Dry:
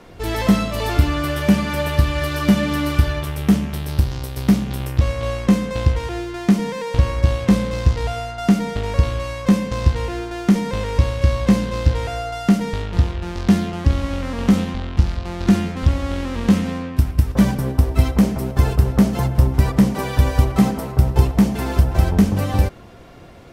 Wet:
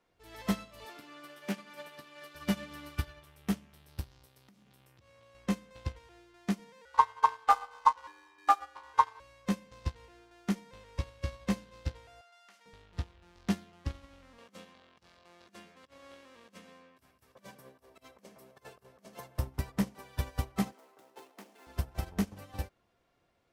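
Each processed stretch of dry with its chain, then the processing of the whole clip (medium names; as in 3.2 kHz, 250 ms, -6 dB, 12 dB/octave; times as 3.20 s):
0.85–2.35 s: high-pass 190 Hz 24 dB/octave + loudspeaker Doppler distortion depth 0.11 ms
4.26–5.35 s: high-pass 87 Hz 24 dB/octave + compression 8:1, threshold -25 dBFS
6.85–9.20 s: ring modulator 1 kHz + feedback delay 130 ms, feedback 57%, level -16.5 dB
12.21–12.66 s: high-pass 1 kHz + treble shelf 10 kHz -8.5 dB
14.38–19.39 s: compressor with a negative ratio -18 dBFS, ratio -0.5 + high-pass 220 Hz + comb 1.8 ms, depth 31%
20.72–21.67 s: median filter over 9 samples + high-pass 290 Hz 24 dB/octave + treble shelf 3.4 kHz +7 dB
whole clip: bass shelf 440 Hz -9 dB; upward expansion 2.5:1, over -29 dBFS; trim -3.5 dB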